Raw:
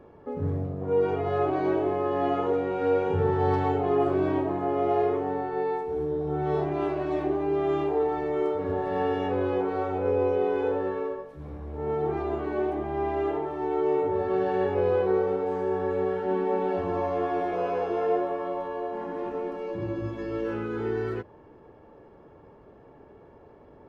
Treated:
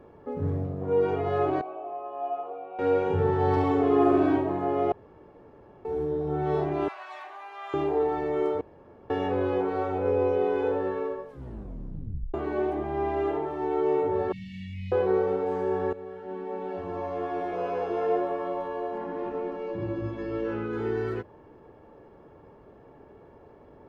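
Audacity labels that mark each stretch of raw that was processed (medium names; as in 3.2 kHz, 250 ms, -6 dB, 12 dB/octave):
1.610000	2.790000	vowel filter a
3.500000	4.370000	flutter echo walls apart 11.6 m, dies away in 0.99 s
4.920000	5.850000	room tone
6.880000	7.740000	high-pass 930 Hz 24 dB/octave
8.610000	9.100000	room tone
11.290000	11.290000	tape stop 1.05 s
14.320000	14.920000	brick-wall FIR band-stop 250–1800 Hz
15.930000	18.300000	fade in, from -15 dB
18.980000	20.730000	distance through air 82 m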